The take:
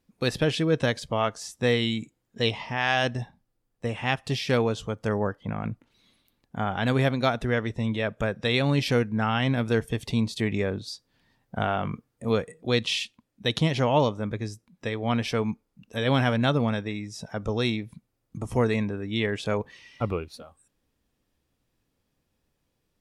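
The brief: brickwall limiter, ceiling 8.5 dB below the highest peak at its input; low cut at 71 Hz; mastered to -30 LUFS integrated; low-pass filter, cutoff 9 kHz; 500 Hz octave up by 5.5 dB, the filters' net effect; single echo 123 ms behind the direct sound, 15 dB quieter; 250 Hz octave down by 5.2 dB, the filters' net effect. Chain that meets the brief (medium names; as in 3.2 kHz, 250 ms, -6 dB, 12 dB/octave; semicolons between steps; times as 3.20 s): high-pass 71 Hz; low-pass 9 kHz; peaking EQ 250 Hz -9 dB; peaking EQ 500 Hz +8.5 dB; peak limiter -15.5 dBFS; delay 123 ms -15 dB; trim -2.5 dB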